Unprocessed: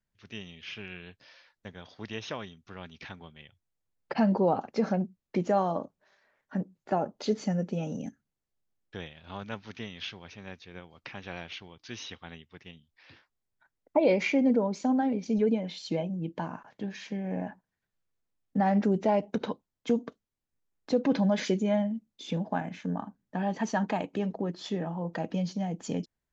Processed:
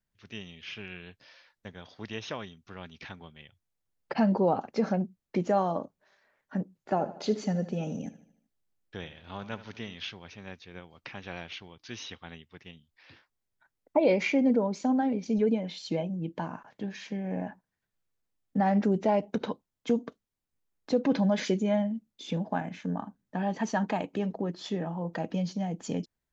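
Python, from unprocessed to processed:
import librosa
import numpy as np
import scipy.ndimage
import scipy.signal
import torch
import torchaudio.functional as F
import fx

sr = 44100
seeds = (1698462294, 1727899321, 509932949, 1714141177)

y = fx.echo_feedback(x, sr, ms=76, feedback_pct=50, wet_db=-15.0, at=(6.95, 9.94), fade=0.02)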